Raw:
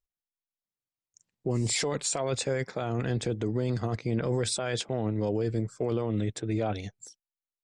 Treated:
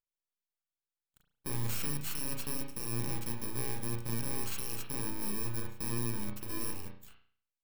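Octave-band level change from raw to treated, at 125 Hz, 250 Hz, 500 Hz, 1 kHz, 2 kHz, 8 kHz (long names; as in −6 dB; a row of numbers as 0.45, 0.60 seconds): −9.0, −10.0, −16.0, −8.0, −7.0, −5.5 decibels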